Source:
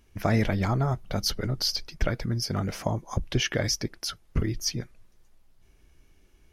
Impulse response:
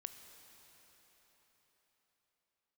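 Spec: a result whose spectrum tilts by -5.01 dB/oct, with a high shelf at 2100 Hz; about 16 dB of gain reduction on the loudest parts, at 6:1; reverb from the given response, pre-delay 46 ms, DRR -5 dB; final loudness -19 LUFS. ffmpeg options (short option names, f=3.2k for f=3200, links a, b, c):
-filter_complex "[0:a]highshelf=f=2.1k:g=-8.5,acompressor=threshold=-38dB:ratio=6,asplit=2[a][b];[1:a]atrim=start_sample=2205,adelay=46[c];[b][c]afir=irnorm=-1:irlink=0,volume=9dB[d];[a][d]amix=inputs=2:normalize=0,volume=18dB"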